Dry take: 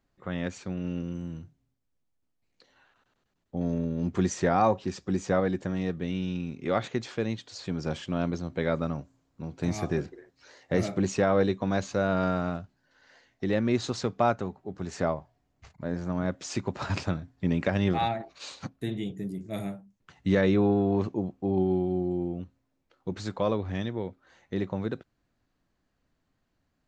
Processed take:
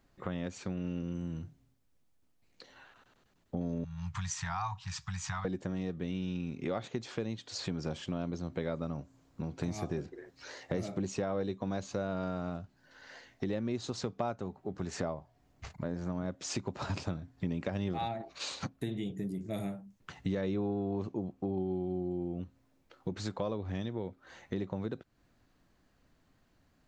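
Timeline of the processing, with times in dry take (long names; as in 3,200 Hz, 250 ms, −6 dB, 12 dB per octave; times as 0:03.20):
0:03.84–0:05.45: elliptic band-stop filter 140–920 Hz
whole clip: dynamic equaliser 1,800 Hz, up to −5 dB, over −45 dBFS, Q 1.2; downward compressor 3 to 1, threshold −43 dBFS; level +6.5 dB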